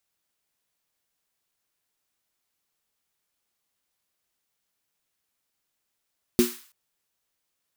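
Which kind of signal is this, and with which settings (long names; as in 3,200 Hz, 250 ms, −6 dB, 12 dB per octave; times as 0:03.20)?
synth snare length 0.33 s, tones 240 Hz, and 360 Hz, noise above 1,100 Hz, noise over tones −10.5 dB, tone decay 0.22 s, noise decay 0.50 s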